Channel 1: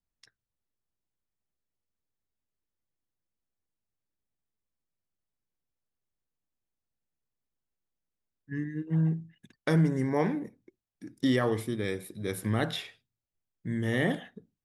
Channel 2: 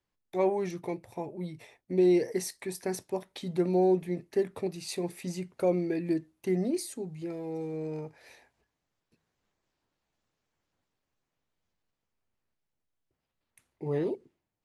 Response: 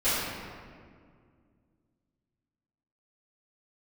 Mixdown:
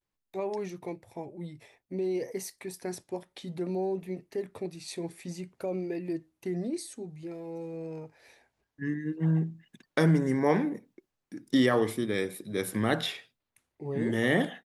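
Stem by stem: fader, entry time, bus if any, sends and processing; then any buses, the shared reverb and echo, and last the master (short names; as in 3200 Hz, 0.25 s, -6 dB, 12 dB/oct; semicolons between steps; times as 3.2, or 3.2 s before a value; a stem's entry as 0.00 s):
+3.0 dB, 0.30 s, no send, HPF 160 Hz; gate with hold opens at -56 dBFS
-3.0 dB, 0.00 s, no send, limiter -21.5 dBFS, peak gain reduction 5.5 dB; vibrato 0.55 Hz 68 cents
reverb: off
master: dry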